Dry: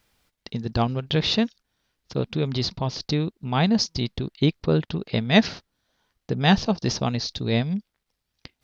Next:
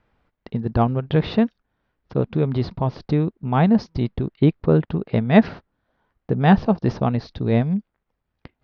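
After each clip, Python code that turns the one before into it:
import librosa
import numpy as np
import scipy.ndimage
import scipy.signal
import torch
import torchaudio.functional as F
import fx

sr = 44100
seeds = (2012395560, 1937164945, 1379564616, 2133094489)

y = scipy.signal.sosfilt(scipy.signal.butter(2, 1500.0, 'lowpass', fs=sr, output='sos'), x)
y = F.gain(torch.from_numpy(y), 4.5).numpy()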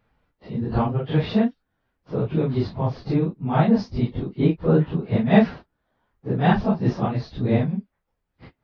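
y = fx.phase_scramble(x, sr, seeds[0], window_ms=100)
y = F.gain(torch.from_numpy(y), -1.5).numpy()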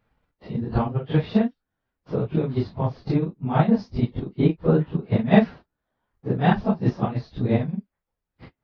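y = fx.transient(x, sr, attack_db=5, sustain_db=-4)
y = F.gain(torch.from_numpy(y), -3.0).numpy()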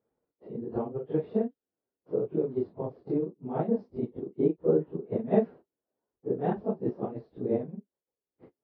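y = fx.bandpass_q(x, sr, hz=410.0, q=2.4)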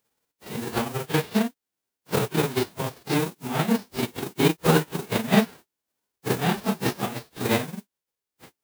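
y = fx.envelope_flatten(x, sr, power=0.3)
y = F.gain(torch.from_numpy(y), 5.0).numpy()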